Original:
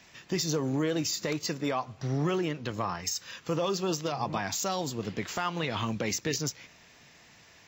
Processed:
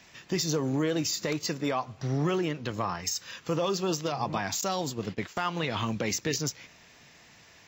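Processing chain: 4.61–5.37 s: gate -35 dBFS, range -16 dB; trim +1 dB

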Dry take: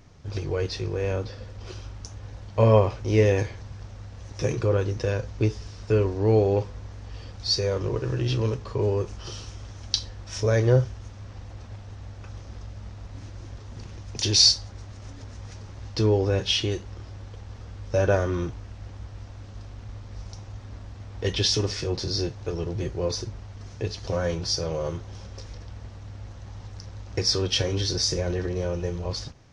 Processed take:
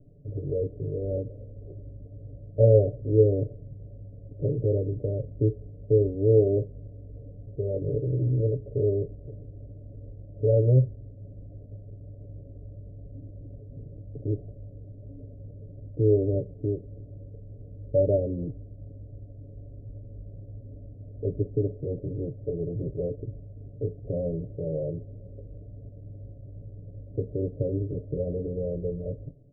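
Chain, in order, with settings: steep low-pass 640 Hz 96 dB/octave; comb 7 ms, depth 84%; trim -3 dB

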